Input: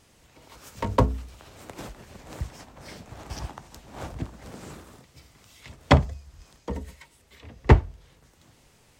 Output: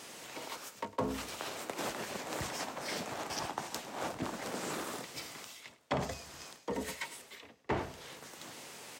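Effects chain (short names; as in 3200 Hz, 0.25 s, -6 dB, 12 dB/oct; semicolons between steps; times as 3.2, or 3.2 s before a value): HPF 190 Hz 12 dB/oct; low shelf 240 Hz -9.5 dB; reverse; compressor 5:1, threshold -48 dBFS, peak gain reduction 29.5 dB; reverse; echo 0.104 s -19 dB; gain +12.5 dB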